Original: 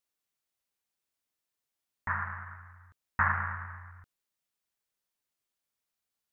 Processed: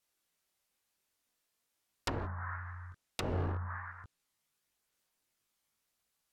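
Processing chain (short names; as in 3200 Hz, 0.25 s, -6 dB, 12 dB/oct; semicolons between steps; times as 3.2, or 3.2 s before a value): wrapped overs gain 27 dB; chorus voices 2, 0.5 Hz, delay 20 ms, depth 2.7 ms; treble ducked by the level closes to 570 Hz, closed at -37.5 dBFS; gain +9 dB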